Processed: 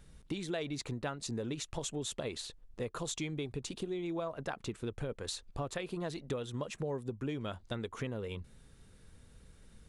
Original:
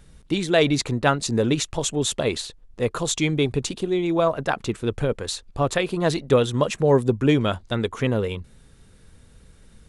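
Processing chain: compressor 6:1, threshold -28 dBFS, peak gain reduction 15 dB; gain -7 dB

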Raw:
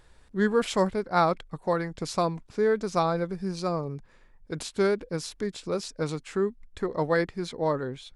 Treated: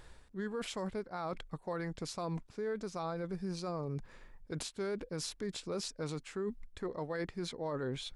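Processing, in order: reverse; compressor 4:1, threshold -37 dBFS, peak gain reduction 16.5 dB; reverse; limiter -32 dBFS, peak gain reduction 7 dB; gain +2.5 dB

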